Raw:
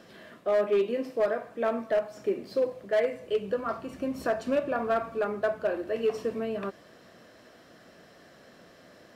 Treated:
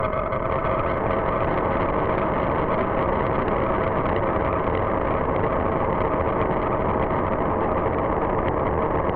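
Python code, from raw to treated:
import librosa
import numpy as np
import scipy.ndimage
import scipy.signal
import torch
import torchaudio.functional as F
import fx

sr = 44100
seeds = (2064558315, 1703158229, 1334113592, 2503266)

p1 = fx.spec_gate(x, sr, threshold_db=-15, keep='strong')
p2 = fx.low_shelf(p1, sr, hz=320.0, db=-10.0)
p3 = fx.level_steps(p2, sr, step_db=11)
p4 = p2 + (p3 * librosa.db_to_amplitude(1.0))
p5 = fx.filter_lfo_notch(p4, sr, shape='saw_up', hz=6.6, low_hz=420.0, high_hz=5500.0, q=0.98)
p6 = fx.paulstretch(p5, sr, seeds[0], factor=50.0, window_s=1.0, from_s=5.62)
p7 = fx.echo_pitch(p6, sr, ms=488, semitones=-3, count=3, db_per_echo=-3.0)
p8 = fx.cheby_harmonics(p7, sr, harmonics=(8,), levels_db=(-10,), full_scale_db=-11.0)
p9 = p8 + 10.0 ** (-3.0 / 20.0) * np.pad(p8, (int(611 * sr / 1000.0), 0))[:len(p8)]
y = fx.band_squash(p9, sr, depth_pct=70)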